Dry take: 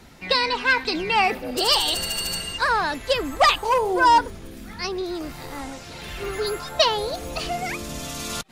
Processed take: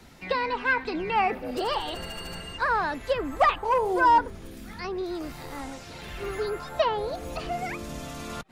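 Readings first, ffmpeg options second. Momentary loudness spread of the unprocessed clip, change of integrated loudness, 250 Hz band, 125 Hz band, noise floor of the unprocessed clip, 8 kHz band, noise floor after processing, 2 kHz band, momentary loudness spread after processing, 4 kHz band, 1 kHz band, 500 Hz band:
16 LU, −5.0 dB, −3.0 dB, −3.0 dB, −40 dBFS, below −10 dB, −43 dBFS, −5.5 dB, 16 LU, −14.0 dB, −3.0 dB, −3.0 dB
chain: -filter_complex "[0:a]acrossover=split=160|2300[link_01][link_02][link_03];[link_03]acompressor=threshold=-43dB:ratio=6[link_04];[link_01][link_02][link_04]amix=inputs=3:normalize=0,volume=-3dB"

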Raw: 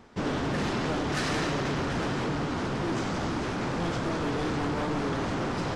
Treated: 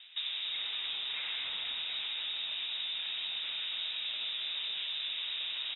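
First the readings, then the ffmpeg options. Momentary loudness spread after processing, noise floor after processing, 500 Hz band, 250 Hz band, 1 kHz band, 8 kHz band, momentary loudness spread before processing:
0 LU, −39 dBFS, −31.0 dB, below −40 dB, −22.5 dB, below −40 dB, 2 LU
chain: -filter_complex "[0:a]acrossover=split=2900[link_01][link_02];[link_02]adelay=280[link_03];[link_01][link_03]amix=inputs=2:normalize=0,acompressor=threshold=-35dB:ratio=6,lowpass=frequency=3300:width_type=q:width=0.5098,lowpass=frequency=3300:width_type=q:width=0.6013,lowpass=frequency=3300:width_type=q:width=0.9,lowpass=frequency=3300:width_type=q:width=2.563,afreqshift=-3900"

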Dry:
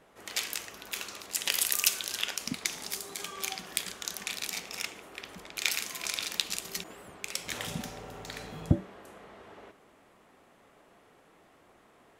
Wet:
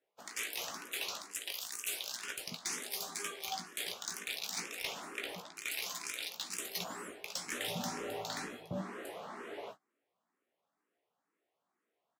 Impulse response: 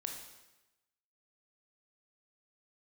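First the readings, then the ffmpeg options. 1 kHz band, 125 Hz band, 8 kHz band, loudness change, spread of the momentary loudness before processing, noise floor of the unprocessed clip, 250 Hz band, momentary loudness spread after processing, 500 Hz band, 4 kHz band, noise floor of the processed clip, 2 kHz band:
−0.5 dB, −13.5 dB, −7.0 dB, −6.5 dB, 17 LU, −61 dBFS, −7.0 dB, 6 LU, −0.5 dB, −6.0 dB, below −85 dBFS, −4.5 dB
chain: -filter_complex "[0:a]highpass=210,agate=range=-30dB:threshold=-53dB:ratio=16:detection=peak,areverse,acompressor=threshold=-40dB:ratio=8,areverse,asoftclip=type=hard:threshold=-34.5dB,asplit=2[link_01][link_02];[link_02]adelay=17,volume=-7dB[link_03];[link_01][link_03]amix=inputs=2:normalize=0,asplit=2[link_04][link_05];[link_05]afreqshift=2.1[link_06];[link_04][link_06]amix=inputs=2:normalize=1,volume=7.5dB"

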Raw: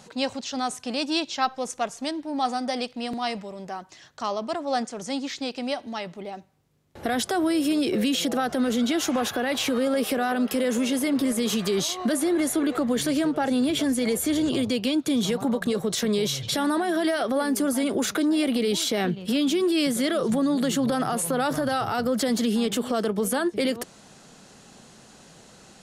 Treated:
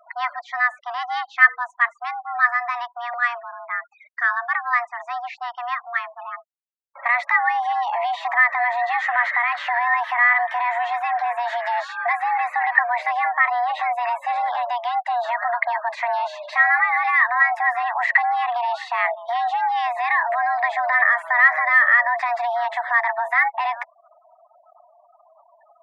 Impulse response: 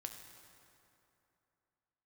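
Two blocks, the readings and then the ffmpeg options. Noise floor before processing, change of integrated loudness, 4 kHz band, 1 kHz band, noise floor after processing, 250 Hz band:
−51 dBFS, +5.0 dB, −10.0 dB, +11.0 dB, −58 dBFS, below −40 dB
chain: -af "afreqshift=480,afftfilt=real='re*gte(hypot(re,im),0.01)':imag='im*gte(hypot(re,im),0.01)':win_size=1024:overlap=0.75,lowpass=frequency=1900:width_type=q:width=11,volume=-1dB"

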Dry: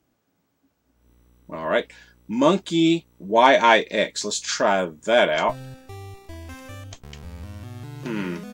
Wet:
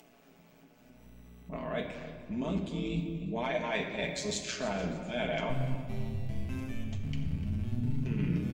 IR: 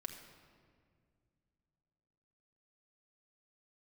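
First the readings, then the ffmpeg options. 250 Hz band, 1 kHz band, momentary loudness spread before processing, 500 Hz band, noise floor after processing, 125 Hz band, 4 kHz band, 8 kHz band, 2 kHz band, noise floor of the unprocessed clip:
−9.0 dB, −19.5 dB, 24 LU, −15.0 dB, −60 dBFS, +1.0 dB, −14.0 dB, −11.5 dB, −15.0 dB, −71 dBFS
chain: -filter_complex "[0:a]asubboost=boost=6.5:cutoff=240,acrossover=split=140[link_01][link_02];[link_02]acompressor=mode=upward:threshold=-39dB:ratio=2.5[link_03];[link_01][link_03]amix=inputs=2:normalize=0,equalizer=frequency=160:width_type=o:width=0.67:gain=5,equalizer=frequency=630:width_type=o:width=0.67:gain=7,equalizer=frequency=2500:width_type=o:width=0.67:gain=8,areverse,acompressor=threshold=-21dB:ratio=10,areverse,tremolo=f=120:d=0.788,flanger=delay=7:depth=1.4:regen=65:speed=0.72:shape=sinusoidal,aecho=1:1:297|594|891:0.168|0.0537|0.0172[link_04];[1:a]atrim=start_sample=2205[link_05];[link_04][link_05]afir=irnorm=-1:irlink=0,volume=1.5dB"

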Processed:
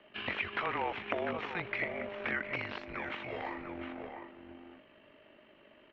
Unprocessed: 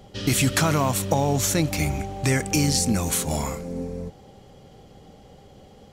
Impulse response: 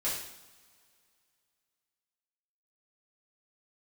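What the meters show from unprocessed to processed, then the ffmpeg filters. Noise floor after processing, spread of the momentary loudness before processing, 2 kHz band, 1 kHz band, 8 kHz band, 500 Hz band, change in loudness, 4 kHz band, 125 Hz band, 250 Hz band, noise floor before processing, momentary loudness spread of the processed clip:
−61 dBFS, 12 LU, −4.5 dB, −9.5 dB, below −40 dB, −11.5 dB, −14.0 dB, −15.5 dB, −26.5 dB, −18.5 dB, −50 dBFS, 15 LU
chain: -filter_complex "[0:a]acrossover=split=410|630|2000[link_01][link_02][link_03][link_04];[link_02]acrusher=bits=4:dc=4:mix=0:aa=0.000001[link_05];[link_03]aemphasis=mode=production:type=riaa[link_06];[link_04]acontrast=81[link_07];[link_01][link_05][link_06][link_07]amix=inputs=4:normalize=0,asplit=2[link_08][link_09];[link_09]adelay=699.7,volume=-8dB,highshelf=frequency=4000:gain=-15.7[link_10];[link_08][link_10]amix=inputs=2:normalize=0,tremolo=f=49:d=0.4,acompressor=threshold=-25dB:ratio=2.5,aeval=exprs='(mod(5.96*val(0)+1,2)-1)/5.96':channel_layout=same,highpass=frequency=440:width_type=q:width=0.5412,highpass=frequency=440:width_type=q:width=1.307,lowpass=frequency=2800:width_type=q:width=0.5176,lowpass=frequency=2800:width_type=q:width=0.7071,lowpass=frequency=2800:width_type=q:width=1.932,afreqshift=-180,volume=-1.5dB"

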